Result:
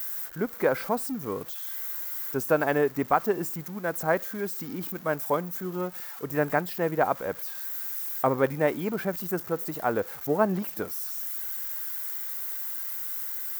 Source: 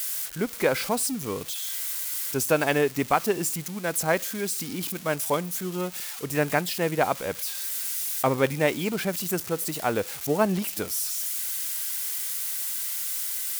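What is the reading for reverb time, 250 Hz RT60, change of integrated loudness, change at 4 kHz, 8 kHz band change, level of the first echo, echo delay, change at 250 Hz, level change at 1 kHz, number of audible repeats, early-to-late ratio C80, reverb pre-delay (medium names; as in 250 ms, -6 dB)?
no reverb, no reverb, -2.0 dB, -12.5 dB, -12.5 dB, no echo, no echo, -1.5 dB, 0.0 dB, no echo, no reverb, no reverb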